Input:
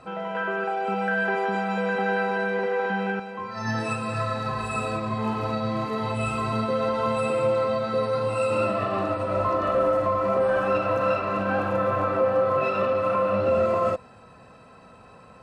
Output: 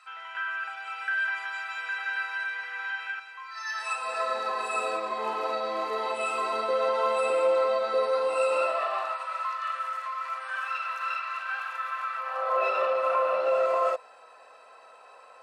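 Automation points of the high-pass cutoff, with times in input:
high-pass 24 dB/octave
3.72 s 1.3 kHz
4.28 s 400 Hz
8.37 s 400 Hz
9.53 s 1.3 kHz
12.17 s 1.3 kHz
12.59 s 530 Hz

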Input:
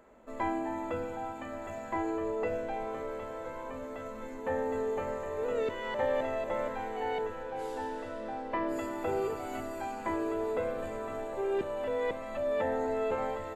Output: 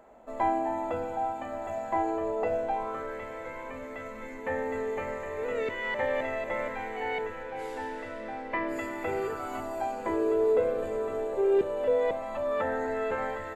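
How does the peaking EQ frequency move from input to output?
peaking EQ +10.5 dB 0.56 oct
2.64 s 740 Hz
3.23 s 2.1 kHz
9.14 s 2.1 kHz
10.11 s 440 Hz
11.78 s 440 Hz
12.82 s 1.7 kHz

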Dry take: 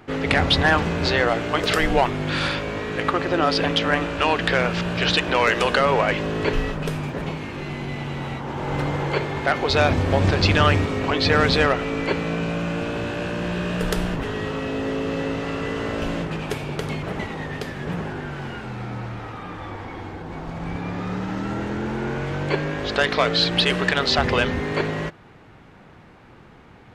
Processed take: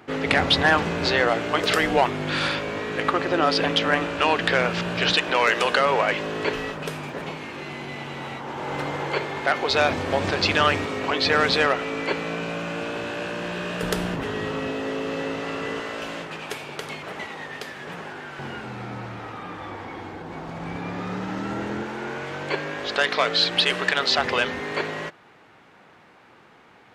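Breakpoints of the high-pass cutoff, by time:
high-pass 6 dB/octave
200 Hz
from 5.13 s 410 Hz
from 13.83 s 150 Hz
from 14.72 s 350 Hz
from 15.80 s 820 Hz
from 18.39 s 200 Hz
from 21.83 s 560 Hz

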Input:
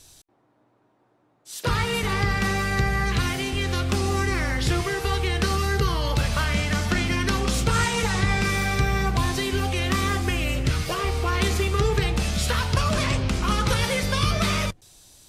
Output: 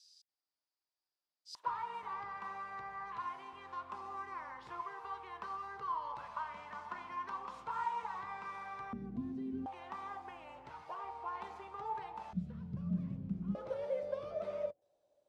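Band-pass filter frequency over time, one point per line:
band-pass filter, Q 12
4.9 kHz
from 1.55 s 1 kHz
from 8.93 s 240 Hz
from 9.66 s 900 Hz
from 12.33 s 180 Hz
from 13.55 s 580 Hz

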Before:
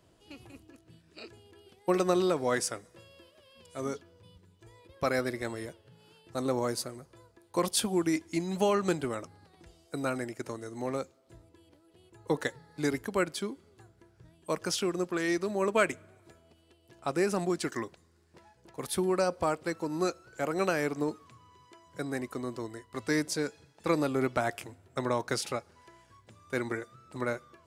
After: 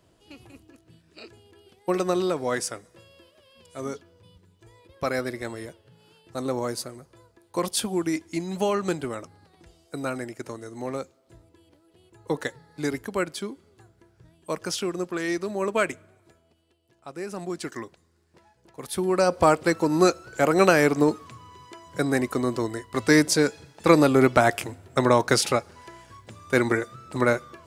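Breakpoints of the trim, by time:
15.90 s +2 dB
17.10 s -8.5 dB
17.59 s -0.5 dB
18.83 s -0.5 dB
19.45 s +11 dB

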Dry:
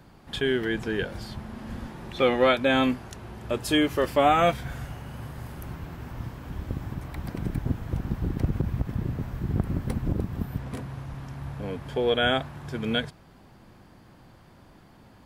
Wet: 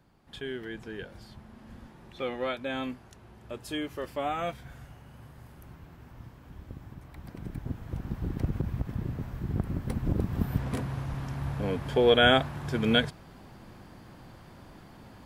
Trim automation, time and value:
7.05 s -11.5 dB
8.34 s -4 dB
9.82 s -4 dB
10.51 s +3 dB

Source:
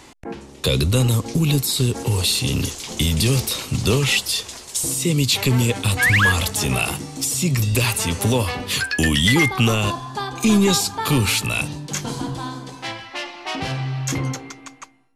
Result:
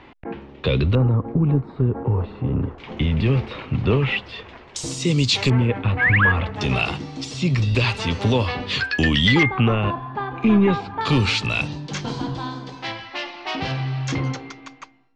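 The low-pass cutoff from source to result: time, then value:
low-pass 24 dB/octave
3 kHz
from 0.95 s 1.4 kHz
from 2.78 s 2.5 kHz
from 4.76 s 6.1 kHz
from 5.50 s 2.3 kHz
from 6.61 s 4.5 kHz
from 9.43 s 2.4 kHz
from 11.01 s 5.1 kHz

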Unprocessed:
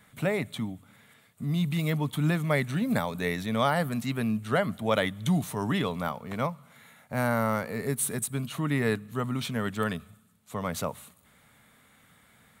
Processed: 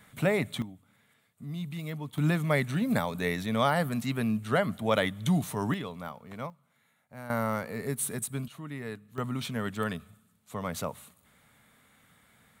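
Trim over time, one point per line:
+1.5 dB
from 0.62 s -9 dB
from 2.18 s -0.5 dB
from 5.74 s -8.5 dB
from 6.50 s -15.5 dB
from 7.30 s -3 dB
from 8.48 s -12 dB
from 9.18 s -2.5 dB

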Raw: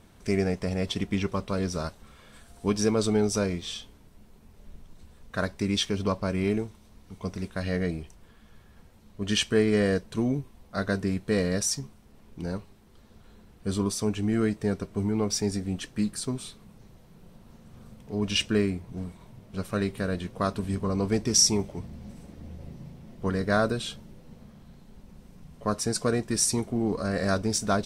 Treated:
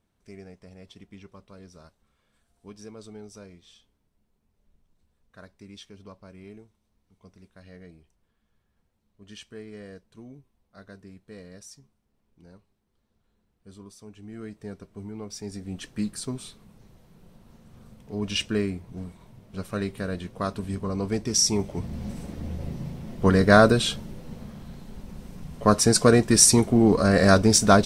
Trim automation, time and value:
14.05 s -19 dB
14.63 s -11 dB
15.34 s -11 dB
15.88 s -1.5 dB
21.42 s -1.5 dB
21.99 s +9 dB

